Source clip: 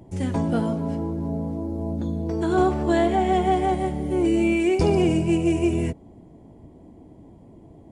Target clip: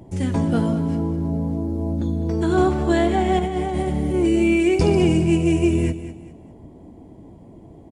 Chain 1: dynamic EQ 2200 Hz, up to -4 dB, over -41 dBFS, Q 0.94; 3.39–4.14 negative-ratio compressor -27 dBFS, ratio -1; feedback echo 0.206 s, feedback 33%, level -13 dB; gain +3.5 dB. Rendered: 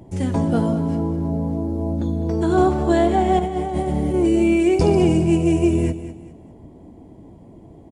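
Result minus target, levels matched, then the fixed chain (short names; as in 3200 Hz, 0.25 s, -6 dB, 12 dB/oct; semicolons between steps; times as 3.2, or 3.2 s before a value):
2000 Hz band -4.0 dB
dynamic EQ 710 Hz, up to -4 dB, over -41 dBFS, Q 0.94; 3.39–4.14 negative-ratio compressor -27 dBFS, ratio -1; feedback echo 0.206 s, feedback 33%, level -13 dB; gain +3.5 dB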